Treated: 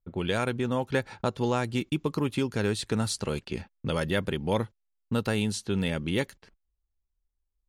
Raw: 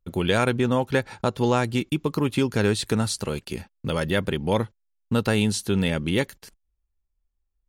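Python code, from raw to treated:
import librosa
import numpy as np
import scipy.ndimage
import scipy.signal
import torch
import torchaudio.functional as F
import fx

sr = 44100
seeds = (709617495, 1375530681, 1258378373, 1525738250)

y = fx.rider(x, sr, range_db=3, speed_s=0.5)
y = fx.env_lowpass(y, sr, base_hz=1200.0, full_db=-20.0)
y = y * librosa.db_to_amplitude(-4.5)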